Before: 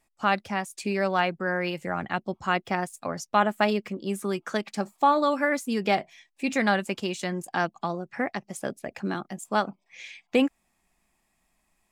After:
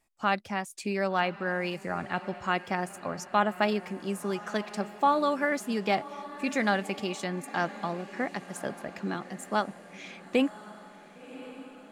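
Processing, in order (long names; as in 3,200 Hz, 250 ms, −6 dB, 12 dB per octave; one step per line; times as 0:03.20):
feedback delay with all-pass diffusion 1,093 ms, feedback 54%, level −15.5 dB
level −3 dB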